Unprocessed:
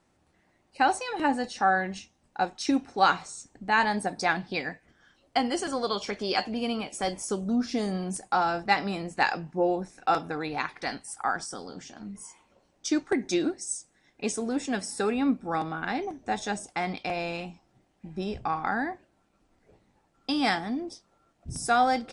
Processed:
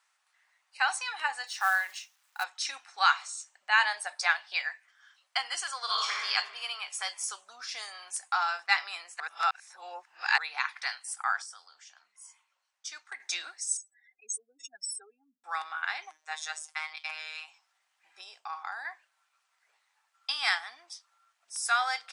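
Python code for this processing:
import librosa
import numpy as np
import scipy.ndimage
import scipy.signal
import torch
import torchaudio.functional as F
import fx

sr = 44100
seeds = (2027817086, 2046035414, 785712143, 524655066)

y = fx.quant_companded(x, sr, bits=6, at=(1.47, 2.44))
y = fx.small_body(y, sr, hz=(610.0, 2900.0), ring_ms=30, db=8, at=(3.19, 4.67))
y = fx.reverb_throw(y, sr, start_s=5.83, length_s=0.42, rt60_s=1.5, drr_db=-3.0)
y = fx.spec_expand(y, sr, power=3.7, at=(13.77, 15.44))
y = fx.robotise(y, sr, hz=156.0, at=(16.11, 17.48))
y = fx.peak_eq(y, sr, hz=1900.0, db=-10.5, octaves=1.8, at=(18.21, 18.85))
y = fx.edit(y, sr, fx.reverse_span(start_s=9.2, length_s=1.18),
    fx.clip_gain(start_s=11.42, length_s=1.78, db=-8.0), tone=tone)
y = scipy.signal.sosfilt(scipy.signal.butter(4, 1100.0, 'highpass', fs=sr, output='sos'), y)
y = y * 10.0 ** (2.0 / 20.0)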